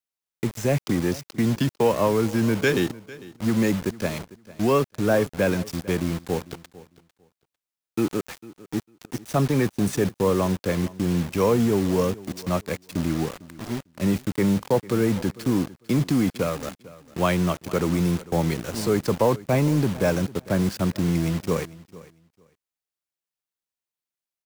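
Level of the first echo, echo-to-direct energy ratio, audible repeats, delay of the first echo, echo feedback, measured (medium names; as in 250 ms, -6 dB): -19.5 dB, -19.5 dB, 2, 450 ms, 18%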